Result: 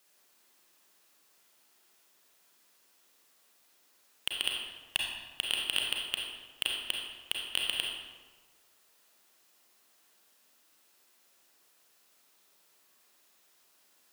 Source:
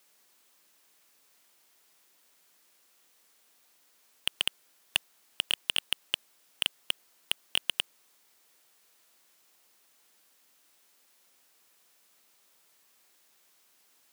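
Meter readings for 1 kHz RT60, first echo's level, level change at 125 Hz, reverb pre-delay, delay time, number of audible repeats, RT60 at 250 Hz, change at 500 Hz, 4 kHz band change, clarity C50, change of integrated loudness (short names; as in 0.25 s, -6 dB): 1.3 s, none, n/a, 31 ms, none, none, 1.4 s, +0.5 dB, -0.5 dB, 1.0 dB, -1.0 dB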